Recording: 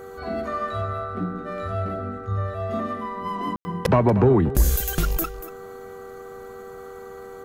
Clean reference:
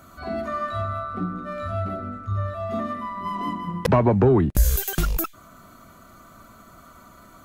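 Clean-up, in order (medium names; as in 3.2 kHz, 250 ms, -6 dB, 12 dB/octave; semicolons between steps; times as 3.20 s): de-hum 389.5 Hz, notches 5; band-stop 480 Hz, Q 30; room tone fill 3.56–3.65 s; inverse comb 237 ms -14.5 dB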